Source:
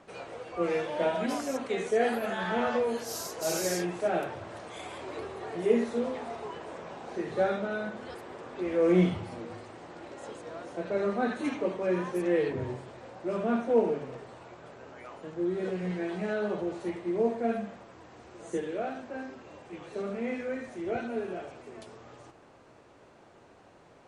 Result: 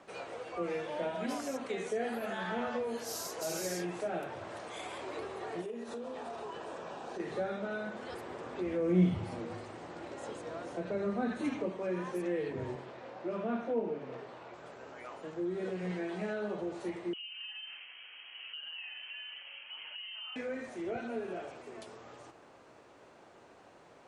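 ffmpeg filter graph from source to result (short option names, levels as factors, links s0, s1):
-filter_complex "[0:a]asettb=1/sr,asplit=3[s0][s1][s2];[s0]atrim=end=5.614[s3];[s1]atrim=start=5.61:end=7.2,asetpts=PTS-STARTPTS,afade=t=in:d=0.004:c=qsin,afade=t=out:st=1.586:d=0.004:c=qsin,bandreject=f=2100:w=6.3,acompressor=threshold=0.0158:ratio=6:attack=3.2:release=140:knee=1:detection=peak[s4];[s2]atrim=start=7.196[s5];[s3][s4]acrossfade=d=0.004:c1=hsin:c2=qsin[s6];[s6][s5]acrossfade=d=0.004:c1=qsin:c2=hsin,asettb=1/sr,asplit=3[s7][s8][s9];[s7]atrim=end=8.124[s10];[s8]atrim=start=8.12:end=11.7,asetpts=PTS-STARTPTS,afade=t=in:d=0.004:c=qsin,afade=t=out:st=3.576:d=0.004:c=qsin,highpass=44,lowshelf=f=190:g=9.5[s11];[s9]atrim=start=11.696[s12];[s10][s11]acrossfade=d=0.004:c1=hsin:c2=qsin[s13];[s13][s12]acrossfade=d=0.004:c1=qsin:c2=hsin,asettb=1/sr,asplit=3[s14][s15][s16];[s14]atrim=end=12.754[s17];[s15]atrim=start=12.75:end=14.54,asetpts=PTS-STARTPTS,afade=t=in:d=0.004:c=qsin,afade=t=out:st=1.786:d=0.004:c=qsin,highpass=110,lowpass=4600,asplit=2[s18][s19];[s19]adelay=24,volume=0.282[s20];[s18][s20]amix=inputs=2:normalize=0,atrim=end_sample=78939[s21];[s16]atrim=start=14.536[s22];[s17][s21]acrossfade=d=0.004:c1=hsin:c2=qsin[s23];[s23][s22]acrossfade=d=0.004:c1=qsin:c2=hsin,asettb=1/sr,asplit=3[s24][s25][s26];[s24]atrim=end=17.134[s27];[s25]atrim=start=17.13:end=20.36,asetpts=PTS-STARTPTS,afade=t=in:d=0.004:c=qsin,afade=t=out:st=3.226:d=0.004:c=qsin,acompressor=threshold=0.00891:ratio=8:attack=3.2:release=140:knee=1:detection=peak,lowpass=f=2800:t=q:w=0.5098,lowpass=f=2800:t=q:w=0.6013,lowpass=f=2800:t=q:w=0.9,lowpass=f=2800:t=q:w=2.563,afreqshift=-3300[s28];[s26]atrim=start=20.356[s29];[s27][s28]acrossfade=d=0.004:c1=hsin:c2=qsin[s30];[s30][s29]acrossfade=d=0.004:c1=qsin:c2=hsin,lowshelf=f=180:g=-8.5,acrossover=split=240[s31][s32];[s32]acompressor=threshold=0.0141:ratio=2.5[s33];[s31][s33]amix=inputs=2:normalize=0"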